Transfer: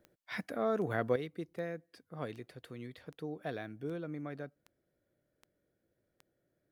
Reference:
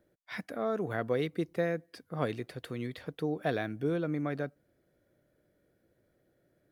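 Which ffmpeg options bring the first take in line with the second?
-af "adeclick=t=4,asetnsamples=n=441:p=0,asendcmd='1.16 volume volume 8.5dB',volume=0dB"

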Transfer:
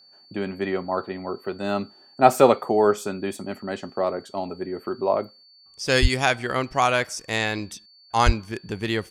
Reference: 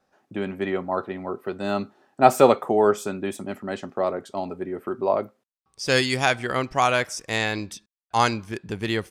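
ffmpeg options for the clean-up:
-filter_complex "[0:a]bandreject=f=4.5k:w=30,asplit=3[a][b][c];[a]afade=t=out:st=6.01:d=0.02[d];[b]highpass=f=140:w=0.5412,highpass=f=140:w=1.3066,afade=t=in:st=6.01:d=0.02,afade=t=out:st=6.13:d=0.02[e];[c]afade=t=in:st=6.13:d=0.02[f];[d][e][f]amix=inputs=3:normalize=0,asplit=3[g][h][i];[g]afade=t=out:st=8.25:d=0.02[j];[h]highpass=f=140:w=0.5412,highpass=f=140:w=1.3066,afade=t=in:st=8.25:d=0.02,afade=t=out:st=8.37:d=0.02[k];[i]afade=t=in:st=8.37:d=0.02[l];[j][k][l]amix=inputs=3:normalize=0"

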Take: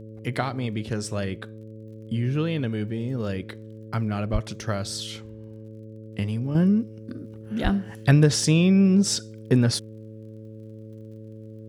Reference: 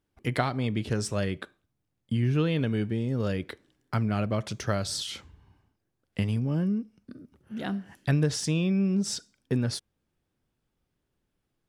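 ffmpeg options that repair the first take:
-filter_complex "[0:a]adeclick=t=4,bandreject=f=109.3:t=h:w=4,bandreject=f=218.6:t=h:w=4,bandreject=f=327.9:t=h:w=4,bandreject=f=437.2:t=h:w=4,bandreject=f=546.5:t=h:w=4,asplit=3[a][b][c];[a]afade=t=out:st=4.32:d=0.02[d];[b]highpass=f=140:w=0.5412,highpass=f=140:w=1.3066,afade=t=in:st=4.32:d=0.02,afade=t=out:st=4.44:d=0.02[e];[c]afade=t=in:st=4.44:d=0.02[f];[d][e][f]amix=inputs=3:normalize=0,asplit=3[g][h][i];[g]afade=t=out:st=7.63:d=0.02[j];[h]highpass=f=140:w=0.5412,highpass=f=140:w=1.3066,afade=t=in:st=7.63:d=0.02,afade=t=out:st=7.75:d=0.02[k];[i]afade=t=in:st=7.75:d=0.02[l];[j][k][l]amix=inputs=3:normalize=0,asetnsamples=n=441:p=0,asendcmd='6.55 volume volume -7.5dB',volume=0dB"

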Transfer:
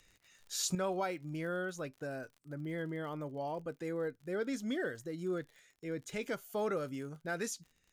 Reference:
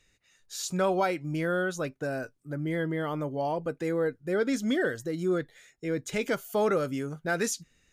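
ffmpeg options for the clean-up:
-af "adeclick=t=4,asetnsamples=n=441:p=0,asendcmd='0.75 volume volume 9dB',volume=0dB"

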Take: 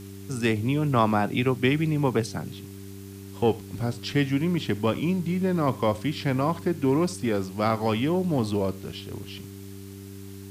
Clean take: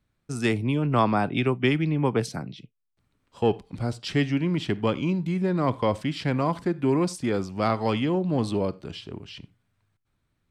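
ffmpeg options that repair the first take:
-af "bandreject=f=98.1:t=h:w=4,bandreject=f=196.2:t=h:w=4,bandreject=f=294.3:t=h:w=4,bandreject=f=392.4:t=h:w=4,afwtdn=0.0028"

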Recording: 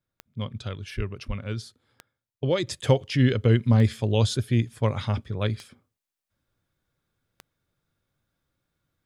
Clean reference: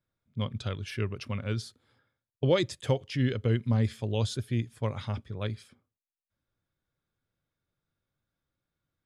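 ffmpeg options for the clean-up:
-filter_complex "[0:a]adeclick=t=4,asplit=3[a][b][c];[a]afade=t=out:st=0.96:d=0.02[d];[b]highpass=f=140:w=0.5412,highpass=f=140:w=1.3066,afade=t=in:st=0.96:d=0.02,afade=t=out:st=1.08:d=0.02[e];[c]afade=t=in:st=1.08:d=0.02[f];[d][e][f]amix=inputs=3:normalize=0,asplit=3[g][h][i];[g]afade=t=out:st=1.27:d=0.02[j];[h]highpass=f=140:w=0.5412,highpass=f=140:w=1.3066,afade=t=in:st=1.27:d=0.02,afade=t=out:st=1.39:d=0.02[k];[i]afade=t=in:st=1.39:d=0.02[l];[j][k][l]amix=inputs=3:normalize=0,asetnsamples=n=441:p=0,asendcmd='2.67 volume volume -7dB',volume=0dB"

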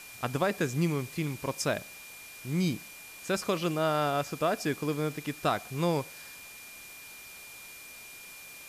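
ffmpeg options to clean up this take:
-af "bandreject=f=2.4k:w=30,afwtdn=0.004"

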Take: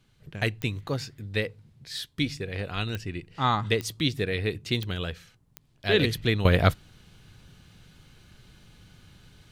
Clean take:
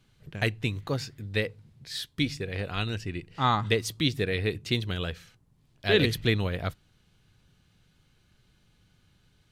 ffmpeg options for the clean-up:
-af "adeclick=t=4,asetnsamples=n=441:p=0,asendcmd='6.45 volume volume -11dB',volume=0dB"

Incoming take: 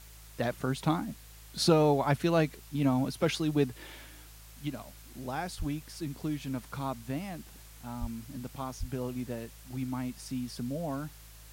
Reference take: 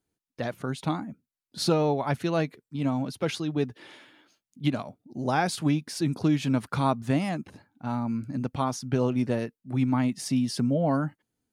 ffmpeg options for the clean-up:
-filter_complex "[0:a]bandreject=f=54.1:t=h:w=4,bandreject=f=108.2:t=h:w=4,bandreject=f=162.3:t=h:w=4,asplit=3[a][b][c];[a]afade=t=out:st=5.58:d=0.02[d];[b]highpass=f=140:w=0.5412,highpass=f=140:w=1.3066,afade=t=in:st=5.58:d=0.02,afade=t=out:st=5.7:d=0.02[e];[c]afade=t=in:st=5.7:d=0.02[f];[d][e][f]amix=inputs=3:normalize=0,asplit=3[g][h][i];[g]afade=t=out:st=8:d=0.02[j];[h]highpass=f=140:w=0.5412,highpass=f=140:w=1.3066,afade=t=in:st=8:d=0.02,afade=t=out:st=8.12:d=0.02[k];[i]afade=t=in:st=8.12:d=0.02[l];[j][k][l]amix=inputs=3:normalize=0,asplit=3[m][n][o];[m]afade=t=out:st=8.79:d=0.02[p];[n]highpass=f=140:w=0.5412,highpass=f=140:w=1.3066,afade=t=in:st=8.79:d=0.02,afade=t=out:st=8.91:d=0.02[q];[o]afade=t=in:st=8.91:d=0.02[r];[p][q][r]amix=inputs=3:normalize=0,afwtdn=0.002,asetnsamples=n=441:p=0,asendcmd='4.3 volume volume 10.5dB',volume=0dB"

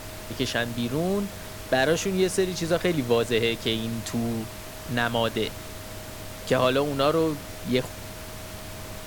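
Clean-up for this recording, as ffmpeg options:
-af "bandreject=f=100.4:t=h:w=4,bandreject=f=200.8:t=h:w=4,bandreject=f=301.2:t=h:w=4,bandreject=f=630:w=30,afftdn=nr=30:nf=-39"

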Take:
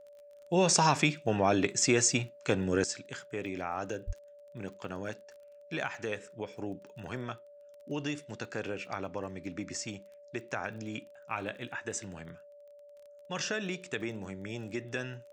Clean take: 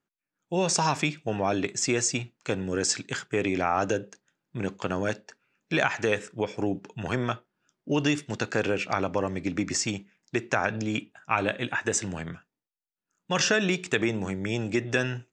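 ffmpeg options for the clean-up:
-filter_complex "[0:a]adeclick=t=4,bandreject=f=580:w=30,asplit=3[a][b][c];[a]afade=t=out:st=4.06:d=0.02[d];[b]highpass=f=140:w=0.5412,highpass=f=140:w=1.3066,afade=t=in:st=4.06:d=0.02,afade=t=out:st=4.18:d=0.02[e];[c]afade=t=in:st=4.18:d=0.02[f];[d][e][f]amix=inputs=3:normalize=0,asetnsamples=n=441:p=0,asendcmd='2.84 volume volume 10.5dB',volume=0dB"

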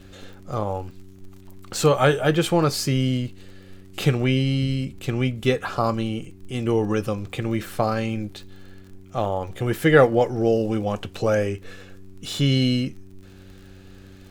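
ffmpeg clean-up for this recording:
-af "adeclick=t=4,bandreject=f=95.3:t=h:w=4,bandreject=f=190.6:t=h:w=4,bandreject=f=285.9:t=h:w=4,bandreject=f=381.2:t=h:w=4"

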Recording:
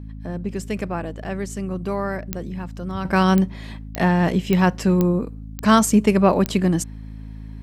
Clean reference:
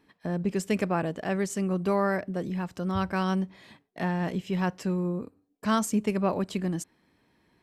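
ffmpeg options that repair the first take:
-af "adeclick=t=4,bandreject=f=53.5:t=h:w=4,bandreject=f=107:t=h:w=4,bandreject=f=160.5:t=h:w=4,bandreject=f=214:t=h:w=4,bandreject=f=267.5:t=h:w=4,asetnsamples=n=441:p=0,asendcmd='3.05 volume volume -10.5dB',volume=0dB"

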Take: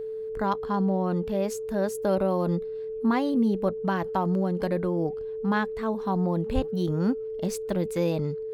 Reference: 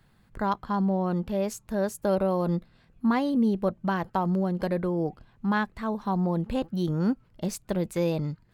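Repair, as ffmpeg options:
-filter_complex "[0:a]bandreject=f=440:w=30,asplit=3[a][b][c];[a]afade=t=out:st=6.54:d=0.02[d];[b]highpass=f=140:w=0.5412,highpass=f=140:w=1.3066,afade=t=in:st=6.54:d=0.02,afade=t=out:st=6.66:d=0.02[e];[c]afade=t=in:st=6.66:d=0.02[f];[d][e][f]amix=inputs=3:normalize=0"

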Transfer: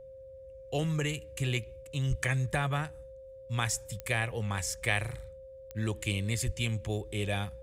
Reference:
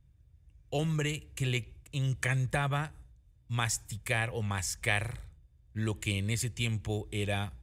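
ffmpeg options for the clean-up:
-filter_complex "[0:a]adeclick=t=4,bandreject=f=530:w=30,asplit=3[a][b][c];[a]afade=t=out:st=2.09:d=0.02[d];[b]highpass=f=140:w=0.5412,highpass=f=140:w=1.3066,afade=t=in:st=2.09:d=0.02,afade=t=out:st=2.21:d=0.02[e];[c]afade=t=in:st=2.21:d=0.02[f];[d][e][f]amix=inputs=3:normalize=0,asplit=3[g][h][i];[g]afade=t=out:st=6.45:d=0.02[j];[h]highpass=f=140:w=0.5412,highpass=f=140:w=1.3066,afade=t=in:st=6.45:d=0.02,afade=t=out:st=6.57:d=0.02[k];[i]afade=t=in:st=6.57:d=0.02[l];[j][k][l]amix=inputs=3:normalize=0"

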